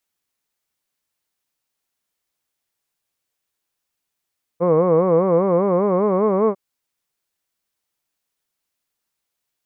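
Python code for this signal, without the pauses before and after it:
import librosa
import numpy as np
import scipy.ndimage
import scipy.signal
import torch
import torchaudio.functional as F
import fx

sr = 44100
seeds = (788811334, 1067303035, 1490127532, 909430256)

y = fx.formant_vowel(sr, seeds[0], length_s=1.95, hz=165.0, glide_st=4.0, vibrato_hz=5.0, vibrato_st=1.45, f1_hz=490.0, f2_hz=1100.0, f3_hz=2200.0)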